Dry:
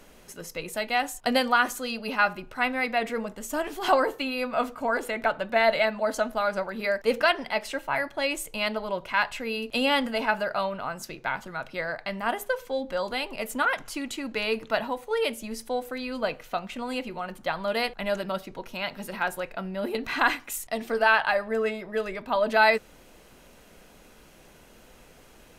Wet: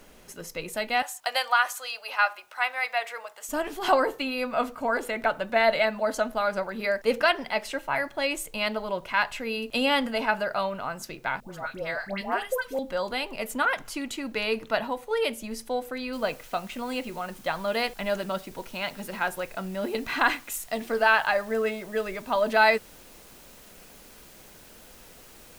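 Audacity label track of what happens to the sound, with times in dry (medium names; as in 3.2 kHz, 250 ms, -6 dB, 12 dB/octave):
1.020000	3.490000	high-pass 660 Hz 24 dB/octave
11.400000	12.790000	phase dispersion highs, late by 124 ms, half as late at 1 kHz
16.130000	16.130000	noise floor step -68 dB -53 dB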